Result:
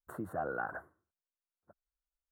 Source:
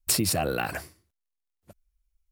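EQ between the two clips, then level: elliptic low-pass 1.5 kHz, stop band 40 dB; tilt EQ +3.5 dB/octave; -5.5 dB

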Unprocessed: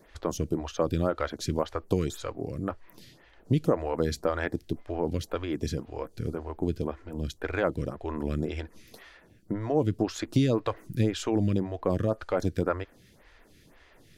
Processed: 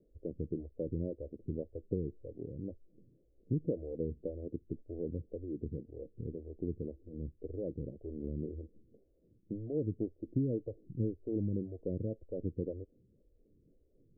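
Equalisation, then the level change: steep low-pass 520 Hz 48 dB/octave; -8.5 dB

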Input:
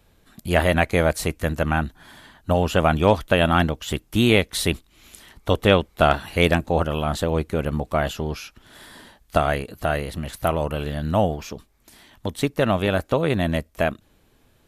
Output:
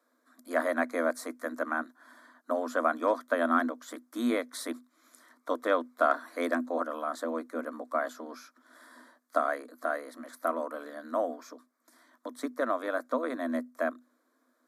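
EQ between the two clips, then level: rippled Chebyshev high-pass 240 Hz, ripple 9 dB; treble shelf 10 kHz -6.5 dB; static phaser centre 560 Hz, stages 8; 0.0 dB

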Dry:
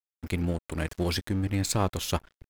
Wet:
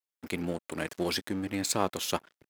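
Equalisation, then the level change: high-pass 230 Hz 12 dB/octave; 0.0 dB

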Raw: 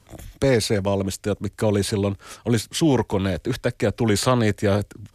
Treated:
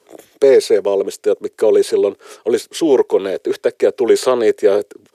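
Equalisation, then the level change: resonant high-pass 410 Hz, resonance Q 4.9; 0.0 dB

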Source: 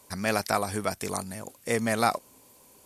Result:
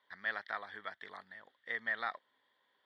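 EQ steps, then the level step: two resonant band-passes 2.5 kHz, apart 0.87 oct; distance through air 440 m; +4.5 dB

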